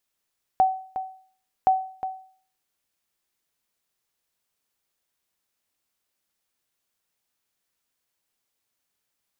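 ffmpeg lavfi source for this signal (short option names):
-f lavfi -i "aevalsrc='0.266*(sin(2*PI*757*mod(t,1.07))*exp(-6.91*mod(t,1.07)/0.49)+0.282*sin(2*PI*757*max(mod(t,1.07)-0.36,0))*exp(-6.91*max(mod(t,1.07)-0.36,0)/0.49))':d=2.14:s=44100"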